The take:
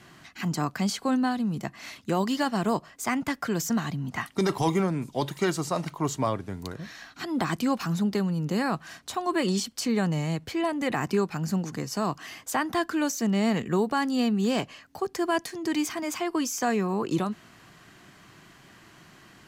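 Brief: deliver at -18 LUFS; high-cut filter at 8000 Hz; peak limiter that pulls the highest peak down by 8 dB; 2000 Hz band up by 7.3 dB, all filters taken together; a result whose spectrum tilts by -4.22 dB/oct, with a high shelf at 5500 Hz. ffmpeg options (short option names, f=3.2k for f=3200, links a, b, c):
-af "lowpass=8k,equalizer=f=2k:t=o:g=8,highshelf=f=5.5k:g=7,volume=10.5dB,alimiter=limit=-7dB:level=0:latency=1"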